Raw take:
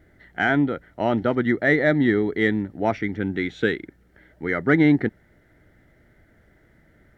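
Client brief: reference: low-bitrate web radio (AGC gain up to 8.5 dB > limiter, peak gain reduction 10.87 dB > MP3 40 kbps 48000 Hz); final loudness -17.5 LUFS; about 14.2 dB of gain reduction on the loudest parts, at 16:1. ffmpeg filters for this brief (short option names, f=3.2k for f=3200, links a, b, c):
-af "acompressor=threshold=-27dB:ratio=16,dynaudnorm=m=8.5dB,alimiter=level_in=2dB:limit=-24dB:level=0:latency=1,volume=-2dB,volume=20dB" -ar 48000 -c:a libmp3lame -b:a 40k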